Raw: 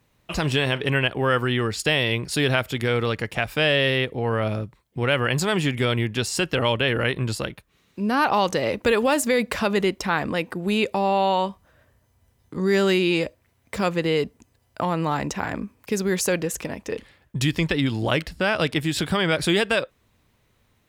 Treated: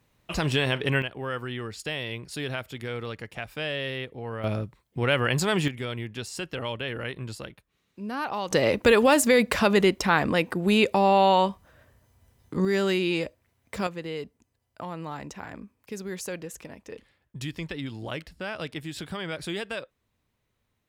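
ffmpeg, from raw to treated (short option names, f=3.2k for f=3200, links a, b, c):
-af "asetnsamples=n=441:p=0,asendcmd='1.02 volume volume -11dB;4.44 volume volume -2dB;5.68 volume volume -10.5dB;8.51 volume volume 1.5dB;12.65 volume volume -5dB;13.87 volume volume -12dB',volume=-2.5dB"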